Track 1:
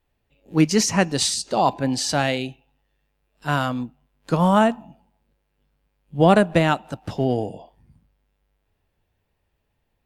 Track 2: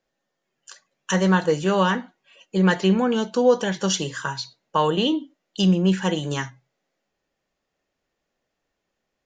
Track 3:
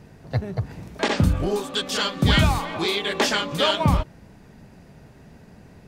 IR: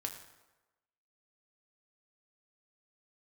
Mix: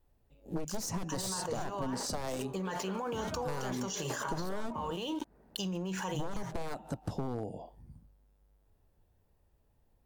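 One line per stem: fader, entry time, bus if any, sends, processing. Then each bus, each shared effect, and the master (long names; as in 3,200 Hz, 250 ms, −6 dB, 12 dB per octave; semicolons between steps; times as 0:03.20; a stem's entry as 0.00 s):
+1.0 dB, 0.00 s, bus A, no send, wavefolder on the positive side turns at −19 dBFS; low-shelf EQ 77 Hz +9.5 dB
−17.5 dB, 0.00 s, bus A, no send, graphic EQ with 15 bands 100 Hz +5 dB, 250 Hz −9 dB, 1,000 Hz +10 dB, 2,500 Hz +11 dB, 6,300 Hz +6 dB; dead-zone distortion −41.5 dBFS; envelope flattener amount 100%
−8.0 dB, 0.90 s, no bus, no send, three-way crossover with the lows and the highs turned down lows −13 dB, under 300 Hz, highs −21 dB, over 2,500 Hz
bus A: 0.0 dB, low-shelf EQ 140 Hz −4.5 dB; brickwall limiter −13.5 dBFS, peak gain reduction 11 dB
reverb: not used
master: parametric band 2,500 Hz −11.5 dB 1.7 octaves; downward compressor 6 to 1, threshold −33 dBFS, peak gain reduction 14 dB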